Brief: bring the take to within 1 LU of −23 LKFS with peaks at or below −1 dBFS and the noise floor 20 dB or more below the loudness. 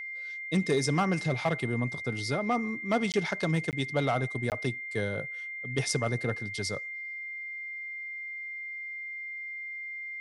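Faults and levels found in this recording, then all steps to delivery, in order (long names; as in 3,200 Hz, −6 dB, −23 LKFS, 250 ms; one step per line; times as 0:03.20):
number of dropouts 3; longest dropout 18 ms; interfering tone 2,100 Hz; level of the tone −36 dBFS; integrated loudness −31.5 LKFS; sample peak −17.0 dBFS; target loudness −23.0 LKFS
→ repair the gap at 0:03.12/0:03.71/0:04.50, 18 ms
notch filter 2,100 Hz, Q 30
level +8.5 dB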